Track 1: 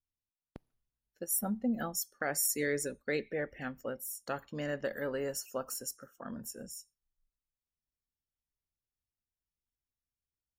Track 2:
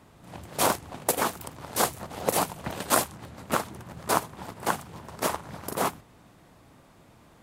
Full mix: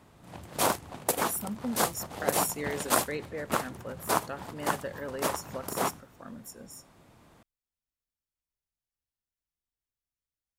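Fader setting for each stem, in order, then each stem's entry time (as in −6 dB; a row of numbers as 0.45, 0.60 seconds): −2.0, −2.5 decibels; 0.00, 0.00 seconds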